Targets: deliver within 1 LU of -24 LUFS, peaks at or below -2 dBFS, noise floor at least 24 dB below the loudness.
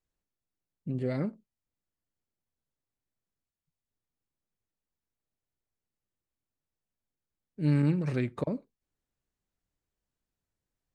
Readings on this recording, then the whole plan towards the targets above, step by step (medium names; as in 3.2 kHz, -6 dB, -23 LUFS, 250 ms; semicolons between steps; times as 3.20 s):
loudness -31.0 LUFS; peak level -15.5 dBFS; loudness target -24.0 LUFS
-> trim +7 dB